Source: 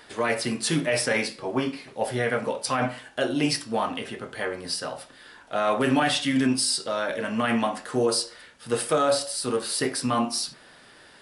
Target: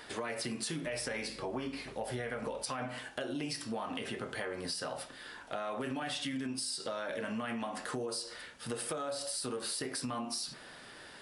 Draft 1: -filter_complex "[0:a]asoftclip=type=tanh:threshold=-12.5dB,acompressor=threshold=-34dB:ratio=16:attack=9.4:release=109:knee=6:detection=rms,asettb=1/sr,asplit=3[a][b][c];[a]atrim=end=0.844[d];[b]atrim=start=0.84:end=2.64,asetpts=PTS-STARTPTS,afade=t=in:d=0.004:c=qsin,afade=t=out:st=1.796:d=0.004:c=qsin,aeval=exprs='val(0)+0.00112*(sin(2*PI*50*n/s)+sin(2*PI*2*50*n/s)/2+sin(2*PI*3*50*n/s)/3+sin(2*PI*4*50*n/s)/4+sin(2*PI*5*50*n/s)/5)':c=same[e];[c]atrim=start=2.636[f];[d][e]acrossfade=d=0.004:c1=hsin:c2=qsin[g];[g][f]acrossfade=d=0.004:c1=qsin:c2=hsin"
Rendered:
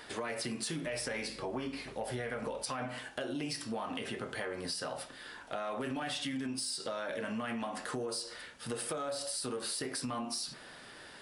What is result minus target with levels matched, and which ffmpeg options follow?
soft clip: distortion +19 dB
-filter_complex "[0:a]asoftclip=type=tanh:threshold=-2.5dB,acompressor=threshold=-34dB:ratio=16:attack=9.4:release=109:knee=6:detection=rms,asettb=1/sr,asplit=3[a][b][c];[a]atrim=end=0.844[d];[b]atrim=start=0.84:end=2.64,asetpts=PTS-STARTPTS,afade=t=in:d=0.004:c=qsin,afade=t=out:st=1.796:d=0.004:c=qsin,aeval=exprs='val(0)+0.00112*(sin(2*PI*50*n/s)+sin(2*PI*2*50*n/s)/2+sin(2*PI*3*50*n/s)/3+sin(2*PI*4*50*n/s)/4+sin(2*PI*5*50*n/s)/5)':c=same[e];[c]atrim=start=2.636[f];[d][e]acrossfade=d=0.004:c1=hsin:c2=qsin[g];[g][f]acrossfade=d=0.004:c1=qsin:c2=hsin"

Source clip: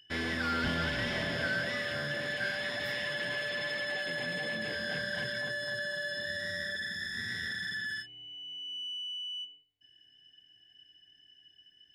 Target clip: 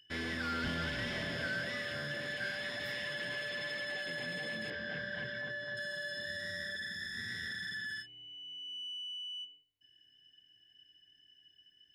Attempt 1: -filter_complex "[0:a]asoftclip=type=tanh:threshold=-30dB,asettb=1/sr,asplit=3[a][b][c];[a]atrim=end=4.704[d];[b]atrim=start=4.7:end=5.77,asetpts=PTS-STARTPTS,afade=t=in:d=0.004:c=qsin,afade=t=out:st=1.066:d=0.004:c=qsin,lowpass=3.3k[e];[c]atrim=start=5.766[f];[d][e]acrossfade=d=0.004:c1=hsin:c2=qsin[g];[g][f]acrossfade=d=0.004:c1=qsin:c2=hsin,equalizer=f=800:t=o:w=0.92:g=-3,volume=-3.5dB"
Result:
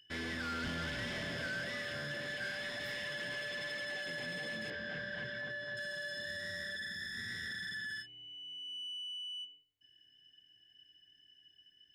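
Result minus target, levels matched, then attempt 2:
soft clip: distortion +13 dB
-filter_complex "[0:a]asoftclip=type=tanh:threshold=-21.5dB,asettb=1/sr,asplit=3[a][b][c];[a]atrim=end=4.704[d];[b]atrim=start=4.7:end=5.77,asetpts=PTS-STARTPTS,afade=t=in:d=0.004:c=qsin,afade=t=out:st=1.066:d=0.004:c=qsin,lowpass=3.3k[e];[c]atrim=start=5.766[f];[d][e]acrossfade=d=0.004:c1=hsin:c2=qsin[g];[g][f]acrossfade=d=0.004:c1=qsin:c2=hsin,equalizer=f=800:t=o:w=0.92:g=-3,volume=-3.5dB"

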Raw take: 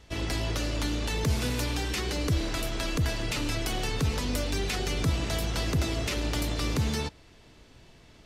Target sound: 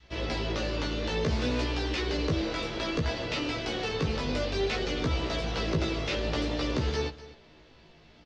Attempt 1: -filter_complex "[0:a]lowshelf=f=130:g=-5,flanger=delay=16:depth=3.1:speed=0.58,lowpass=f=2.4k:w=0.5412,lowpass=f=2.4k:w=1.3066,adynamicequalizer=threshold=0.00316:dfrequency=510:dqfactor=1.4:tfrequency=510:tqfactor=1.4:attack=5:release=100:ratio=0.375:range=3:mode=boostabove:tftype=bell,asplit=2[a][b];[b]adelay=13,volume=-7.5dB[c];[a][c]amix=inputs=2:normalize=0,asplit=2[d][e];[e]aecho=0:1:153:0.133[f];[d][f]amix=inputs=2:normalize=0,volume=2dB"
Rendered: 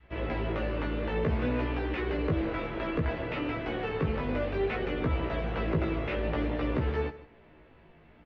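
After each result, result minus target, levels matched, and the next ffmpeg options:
4000 Hz band -11.0 dB; echo 94 ms early
-filter_complex "[0:a]lowshelf=f=130:g=-5,flanger=delay=16:depth=3.1:speed=0.58,lowpass=f=5.2k:w=0.5412,lowpass=f=5.2k:w=1.3066,adynamicequalizer=threshold=0.00316:dfrequency=510:dqfactor=1.4:tfrequency=510:tqfactor=1.4:attack=5:release=100:ratio=0.375:range=3:mode=boostabove:tftype=bell,asplit=2[a][b];[b]adelay=13,volume=-7.5dB[c];[a][c]amix=inputs=2:normalize=0,asplit=2[d][e];[e]aecho=0:1:153:0.133[f];[d][f]amix=inputs=2:normalize=0,volume=2dB"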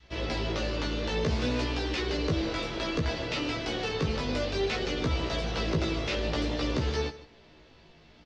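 echo 94 ms early
-filter_complex "[0:a]lowshelf=f=130:g=-5,flanger=delay=16:depth=3.1:speed=0.58,lowpass=f=5.2k:w=0.5412,lowpass=f=5.2k:w=1.3066,adynamicequalizer=threshold=0.00316:dfrequency=510:dqfactor=1.4:tfrequency=510:tqfactor=1.4:attack=5:release=100:ratio=0.375:range=3:mode=boostabove:tftype=bell,asplit=2[a][b];[b]adelay=13,volume=-7.5dB[c];[a][c]amix=inputs=2:normalize=0,asplit=2[d][e];[e]aecho=0:1:247:0.133[f];[d][f]amix=inputs=2:normalize=0,volume=2dB"

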